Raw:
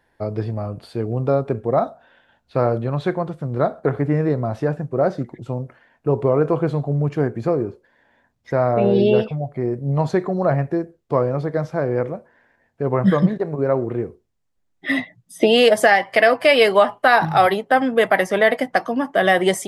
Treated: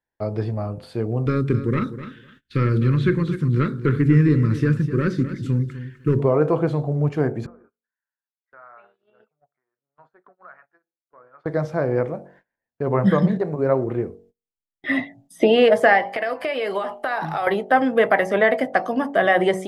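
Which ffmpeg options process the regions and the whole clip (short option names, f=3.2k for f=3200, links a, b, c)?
-filter_complex "[0:a]asettb=1/sr,asplit=3[a][b][c];[a]atrim=end=1.264[d];[b]atrim=start=1.26:end=6.2,asetpts=PTS-STARTPTS,afade=t=in:d=0.004:c=qsin,afade=t=out:st=4.936:d=0.004:c=qsin,acontrast=87,asuperstop=centerf=710:order=4:qfactor=0.61,aecho=1:1:253|506:0.237|0.0379,atrim=end_sample=217854[e];[c]atrim=start=6.196[f];[d][e]acrossfade=d=0.004:c1=hsin:c2=qsin[g];[g][f]acrossfade=d=0.004:c1=qsin:c2=hsin,asettb=1/sr,asplit=3[h][i][j];[h]atrim=end=7.464[k];[i]atrim=start=7.46:end=11.46,asetpts=PTS-STARTPTS,afade=t=in:d=0.004:c=qsin,afade=t=out:st=3.996:d=0.004:c=qsin,acompressor=threshold=-22dB:ratio=6:attack=3.2:release=140:knee=1:detection=peak,bandpass=f=1.4k:t=q:w=4.9,acrossover=split=690[l][m];[l]aeval=exprs='val(0)*(1-0.7/2+0.7/2*cos(2*PI*1.1*n/s))':c=same[n];[m]aeval=exprs='val(0)*(1-0.7/2-0.7/2*cos(2*PI*1.1*n/s))':c=same[o];[n][o]amix=inputs=2:normalize=0[p];[j]atrim=start=11.456[q];[k][p]acrossfade=d=0.004:c1=hsin:c2=qsin[r];[r][q]acrossfade=d=0.004:c1=qsin:c2=hsin,asettb=1/sr,asplit=3[s][t][u];[s]atrim=end=16.104[v];[t]atrim=start=16.1:end=17.47,asetpts=PTS-STARTPTS,afade=t=in:d=0.004:c=qsin,afade=t=out:st=1.366:d=0.004:c=qsin,equalizer=f=96:t=o:w=1.3:g=-12.5,acompressor=threshold=-20dB:ratio=6:attack=3.2:release=140:knee=1:detection=peak[w];[u]atrim=start=17.466[x];[v][w]acrossfade=d=0.004:c1=hsin:c2=qsin[y];[y][x]acrossfade=d=0.004:c1=qsin:c2=hsin,bandreject=f=46.91:t=h:w=4,bandreject=f=93.82:t=h:w=4,bandreject=f=140.73:t=h:w=4,bandreject=f=187.64:t=h:w=4,bandreject=f=234.55:t=h:w=4,bandreject=f=281.46:t=h:w=4,bandreject=f=328.37:t=h:w=4,bandreject=f=375.28:t=h:w=4,bandreject=f=422.19:t=h:w=4,bandreject=f=469.1:t=h:w=4,bandreject=f=516.01:t=h:w=4,bandreject=f=562.92:t=h:w=4,bandreject=f=609.83:t=h:w=4,bandreject=f=656.74:t=h:w=4,bandreject=f=703.65:t=h:w=4,bandreject=f=750.56:t=h:w=4,bandreject=f=797.47:t=h:w=4,bandreject=f=844.38:t=h:w=4,bandreject=f=891.29:t=h:w=4,acrossover=split=2700[z][aa];[aa]acompressor=threshold=-43dB:ratio=4:attack=1:release=60[ab];[z][ab]amix=inputs=2:normalize=0,agate=range=-24dB:threshold=-51dB:ratio=16:detection=peak"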